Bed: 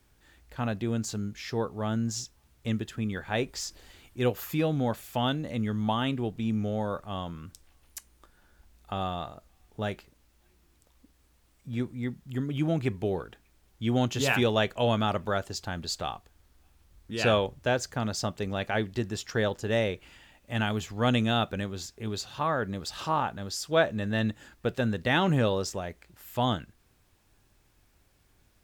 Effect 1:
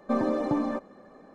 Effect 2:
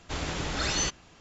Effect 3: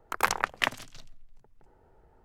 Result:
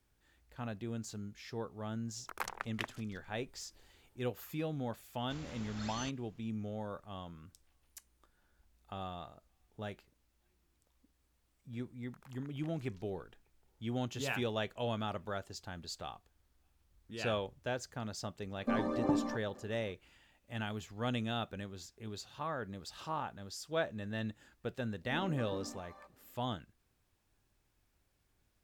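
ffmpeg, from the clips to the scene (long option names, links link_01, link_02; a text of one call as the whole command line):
ffmpeg -i bed.wav -i cue0.wav -i cue1.wav -i cue2.wav -filter_complex "[3:a]asplit=2[link_01][link_02];[1:a]asplit=2[link_03][link_04];[0:a]volume=-11dB[link_05];[link_02]acompressor=threshold=-42dB:ratio=6:attack=3.2:release=140:knee=1:detection=peak[link_06];[link_03]aphaser=in_gain=1:out_gain=1:delay=1.1:decay=0.39:speed=2:type=sinusoidal[link_07];[link_04]acrossover=split=670[link_08][link_09];[link_09]adelay=270[link_10];[link_08][link_10]amix=inputs=2:normalize=0[link_11];[link_01]atrim=end=2.24,asetpts=PTS-STARTPTS,volume=-14dB,afade=type=in:duration=0.004:curve=hsin,afade=type=out:start_time=2.236:duration=0.004:curve=hsin,adelay=2170[link_12];[2:a]atrim=end=1.2,asetpts=PTS-STARTPTS,volume=-17.5dB,afade=type=in:duration=0.004:curve=hsin,afade=type=out:start_time=1.196:duration=0.004:curve=hsin,adelay=5200[link_13];[link_06]atrim=end=2.24,asetpts=PTS-STARTPTS,volume=-16.5dB,afade=type=in:duration=0.004:curve=hsin,afade=type=out:start_time=2.236:duration=0.004:curve=hsin,adelay=12020[link_14];[link_07]atrim=end=1.34,asetpts=PTS-STARTPTS,volume=-8dB,afade=type=in:duration=0.004:curve=hsin,afade=type=out:start_time=1.336:duration=0.004:curve=hsin,adelay=18580[link_15];[link_11]atrim=end=1.34,asetpts=PTS-STARTPTS,volume=-17.5dB,afade=type=in:duration=0.004:curve=hsin,afade=type=out:start_time=1.336:duration=0.004:curve=hsin,adelay=25010[link_16];[link_05][link_12][link_13][link_14][link_15][link_16]amix=inputs=6:normalize=0" out.wav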